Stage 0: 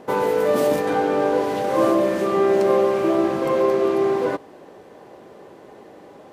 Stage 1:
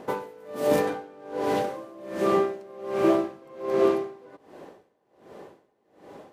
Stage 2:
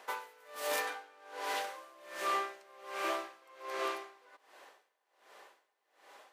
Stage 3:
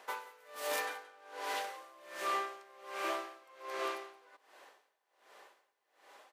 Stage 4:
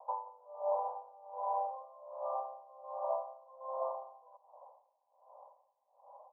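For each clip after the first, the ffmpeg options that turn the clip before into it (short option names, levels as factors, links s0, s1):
-af "aeval=exprs='val(0)*pow(10,-28*(0.5-0.5*cos(2*PI*1.3*n/s))/20)':c=same"
-af "highpass=1300"
-af "aecho=1:1:175:0.112,volume=0.841"
-af "asuperpass=centerf=730:order=12:qfactor=1.4,volume=2"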